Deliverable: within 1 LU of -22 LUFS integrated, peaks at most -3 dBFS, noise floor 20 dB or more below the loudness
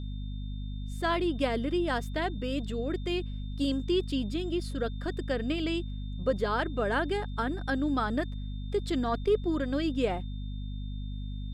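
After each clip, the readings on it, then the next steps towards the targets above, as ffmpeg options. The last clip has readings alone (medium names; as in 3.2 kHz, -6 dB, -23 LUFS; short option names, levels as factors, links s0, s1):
hum 50 Hz; highest harmonic 250 Hz; hum level -33 dBFS; steady tone 3.6 kHz; tone level -54 dBFS; loudness -31.5 LUFS; peak level -15.5 dBFS; loudness target -22.0 LUFS
-> -af "bandreject=f=50:t=h:w=4,bandreject=f=100:t=h:w=4,bandreject=f=150:t=h:w=4,bandreject=f=200:t=h:w=4,bandreject=f=250:t=h:w=4"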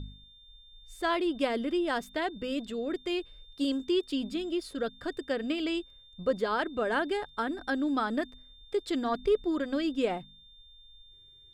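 hum not found; steady tone 3.6 kHz; tone level -54 dBFS
-> -af "bandreject=f=3600:w=30"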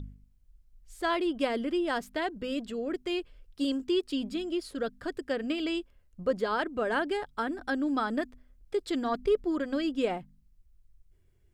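steady tone not found; loudness -31.5 LUFS; peak level -15.5 dBFS; loudness target -22.0 LUFS
-> -af "volume=2.99"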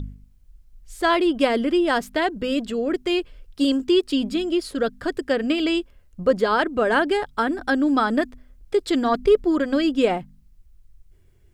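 loudness -22.0 LUFS; peak level -6.0 dBFS; noise floor -54 dBFS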